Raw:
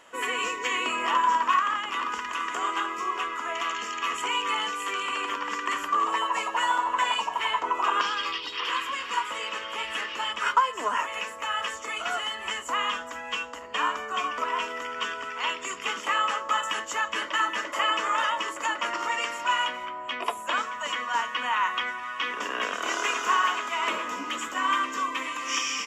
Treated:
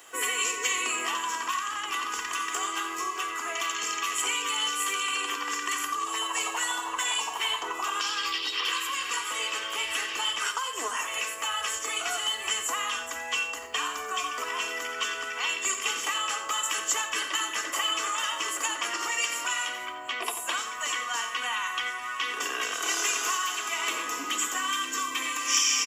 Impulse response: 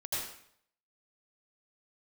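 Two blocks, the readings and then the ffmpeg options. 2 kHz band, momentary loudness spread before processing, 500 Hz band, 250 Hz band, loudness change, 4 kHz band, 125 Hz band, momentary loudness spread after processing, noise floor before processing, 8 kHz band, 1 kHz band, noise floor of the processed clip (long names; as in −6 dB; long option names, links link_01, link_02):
−1.0 dB, 7 LU, −4.0 dB, −3.5 dB, −1.0 dB, +2.0 dB, can't be measured, 4 LU, −38 dBFS, +10.5 dB, −5.5 dB, −36 dBFS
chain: -filter_complex "[0:a]highpass=49,aemphasis=mode=production:type=75kf,aecho=1:1:2.6:0.5,aecho=1:1:88:0.251,acrusher=bits=10:mix=0:aa=0.000001,acrossover=split=180|3000[link_01][link_02][link_03];[link_02]acompressor=threshold=-28dB:ratio=6[link_04];[link_01][link_04][link_03]amix=inputs=3:normalize=0,bandreject=frequency=50:width_type=h:width=6,bandreject=frequency=100:width_type=h:width=6,bandreject=frequency=150:width_type=h:width=6,bandreject=frequency=200:width_type=h:width=6,bandreject=frequency=250:width_type=h:width=6,asplit=2[link_05][link_06];[1:a]atrim=start_sample=2205,asetrate=70560,aresample=44100[link_07];[link_06][link_07]afir=irnorm=-1:irlink=0,volume=-11.5dB[link_08];[link_05][link_08]amix=inputs=2:normalize=0,volume=-2.5dB"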